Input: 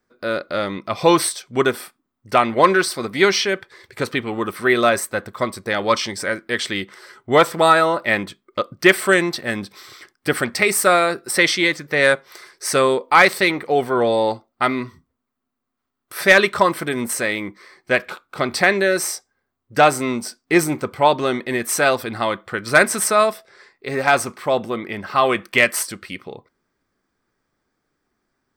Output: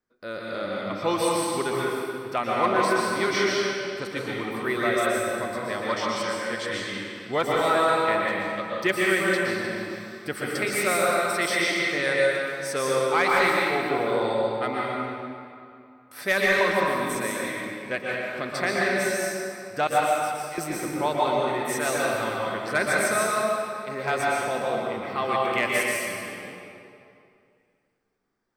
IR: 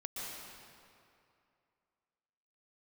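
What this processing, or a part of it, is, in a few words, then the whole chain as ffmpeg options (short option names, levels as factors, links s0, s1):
stairwell: -filter_complex "[0:a]asettb=1/sr,asplit=3[s0][s1][s2];[s0]atrim=end=19.874[s3];[s1]atrim=start=19.87:end=20.58,asetpts=PTS-STARTPTS,afade=t=in:d=0.004:c=qsin,afade=t=out:st=0.706:d=0.004:c=qsin,aderivative[s4];[s2]atrim=start=20.576[s5];[s3][s4]acrossfade=d=0.004:c1=hsin:c2=qsin[s6];[s6][s5]acrossfade=d=0.004:c1=qsin:c2=hsin[s7];[1:a]atrim=start_sample=2205[s8];[s7][s8]afir=irnorm=-1:irlink=0,volume=0.447"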